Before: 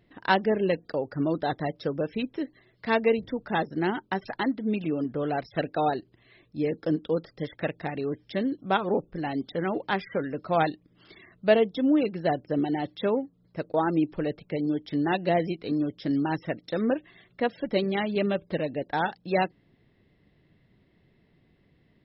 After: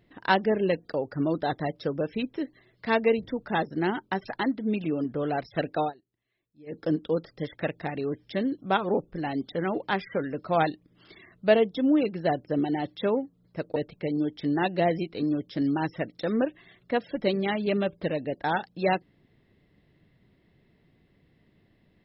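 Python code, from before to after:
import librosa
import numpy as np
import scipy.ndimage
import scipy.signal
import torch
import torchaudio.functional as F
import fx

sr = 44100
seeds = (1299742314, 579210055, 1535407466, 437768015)

y = fx.edit(x, sr, fx.fade_down_up(start_s=5.81, length_s=0.97, db=-23.5, fade_s=0.12),
    fx.cut(start_s=13.76, length_s=0.49), tone=tone)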